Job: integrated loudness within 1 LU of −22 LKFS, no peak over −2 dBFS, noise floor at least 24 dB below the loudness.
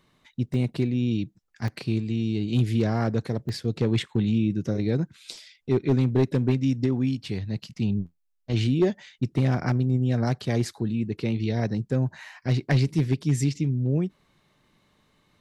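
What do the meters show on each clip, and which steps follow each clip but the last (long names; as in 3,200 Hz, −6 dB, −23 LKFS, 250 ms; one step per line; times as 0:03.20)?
share of clipped samples 0.4%; peaks flattened at −14.0 dBFS; number of dropouts 3; longest dropout 2.4 ms; integrated loudness −26.0 LKFS; sample peak −14.0 dBFS; target loudness −22.0 LKFS
→ clipped peaks rebuilt −14 dBFS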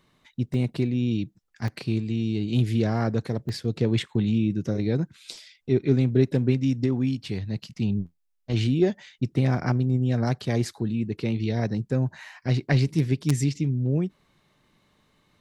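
share of clipped samples 0.0%; number of dropouts 3; longest dropout 2.4 ms
→ repair the gap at 0:00.54/0:01.68/0:03.49, 2.4 ms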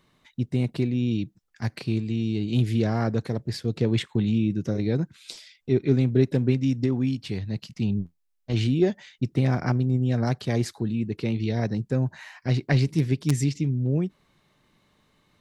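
number of dropouts 0; integrated loudness −26.0 LKFS; sample peak −5.0 dBFS; target loudness −22.0 LKFS
→ level +4 dB
brickwall limiter −2 dBFS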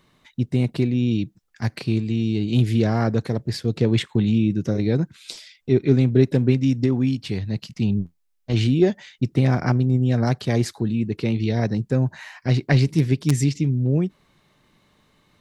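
integrated loudness −22.0 LKFS; sample peak −2.0 dBFS; background noise floor −65 dBFS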